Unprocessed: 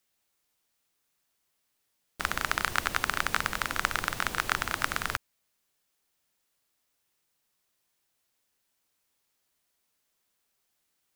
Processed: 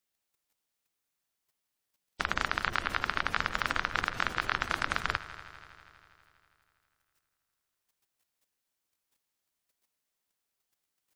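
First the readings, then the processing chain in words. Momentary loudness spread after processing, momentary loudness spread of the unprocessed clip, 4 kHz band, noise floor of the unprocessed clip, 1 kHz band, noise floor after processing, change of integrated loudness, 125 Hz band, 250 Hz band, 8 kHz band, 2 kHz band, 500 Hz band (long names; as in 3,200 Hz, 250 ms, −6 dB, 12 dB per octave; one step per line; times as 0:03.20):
6 LU, 4 LU, −2.0 dB, −78 dBFS, −1.0 dB, −85 dBFS, −1.5 dB, −1.0 dB, −1.0 dB, −10.5 dB, −1.0 dB, −1.0 dB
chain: gate on every frequency bin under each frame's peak −20 dB strong
output level in coarse steps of 11 dB
echo machine with several playback heads 81 ms, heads all three, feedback 67%, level −21 dB
level +3 dB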